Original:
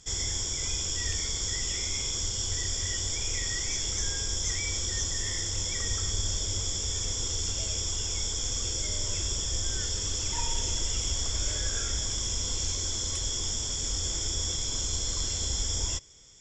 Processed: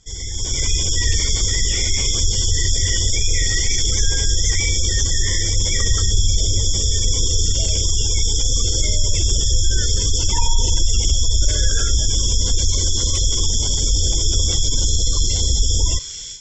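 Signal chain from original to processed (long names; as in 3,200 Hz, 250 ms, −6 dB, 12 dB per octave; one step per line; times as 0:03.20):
delay with a high-pass on its return 837 ms, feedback 57%, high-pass 1,800 Hz, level −12.5 dB
automatic gain control gain up to 15 dB
low-shelf EQ 70 Hz +8 dB
in parallel at +1.5 dB: brickwall limiter −9.5 dBFS, peak gain reduction 10 dB
on the sum: gate on every frequency bin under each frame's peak −30 dB strong
Bessel low-pass filter 7,900 Hz
level −7 dB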